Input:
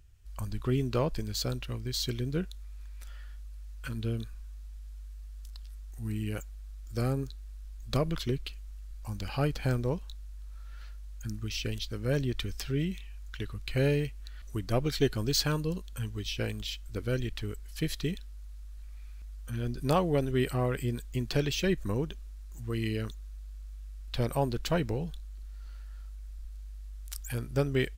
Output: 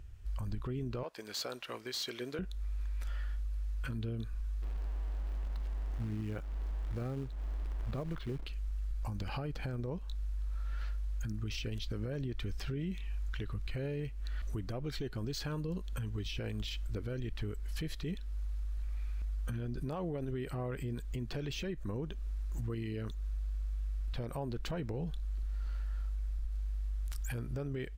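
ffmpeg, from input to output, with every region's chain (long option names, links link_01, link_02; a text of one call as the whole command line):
ffmpeg -i in.wav -filter_complex "[0:a]asettb=1/sr,asplit=3[link_01][link_02][link_03];[link_01]atrim=end=1.034[link_04];[link_02]atrim=start=1.03:end=2.39,asetpts=PTS-STARTPTS,afade=type=in:duration=0.004:curve=qsin,afade=type=out:start_time=1.356:duration=0.004:curve=qsin,highpass=610,volume=28dB,asoftclip=hard,volume=-28dB[link_05];[link_03]atrim=start=2.386[link_06];[link_04][link_05]acrossfade=duration=0.004:curve1=hsin:curve2=qsin[link_07];[link_07][link_06]acrossfade=duration=0.004:curve1=qsin:curve2=hsin,asettb=1/sr,asplit=3[link_08][link_09][link_10];[link_08]atrim=end=4.624[link_11];[link_09]atrim=start=4.62:end=8.46,asetpts=PTS-STARTPTS,afade=type=in:duration=0.004:curve=qsin,afade=type=out:start_time=3.836:duration=0.004:curve=qsin,lowpass=2500,acrusher=bits=4:mode=log:mix=0:aa=0.000001[link_12];[link_10]atrim=start=8.456[link_13];[link_11][link_12]acrossfade=duration=0.004:curve1=hsin:curve2=qsin[link_14];[link_14][link_13]acrossfade=duration=0.004:curve1=qsin:curve2=hsin,highshelf=frequency=3100:gain=-11,acompressor=threshold=-41dB:ratio=4,alimiter=level_in=14.5dB:limit=-24dB:level=0:latency=1:release=29,volume=-14.5dB,volume=8.5dB" out.wav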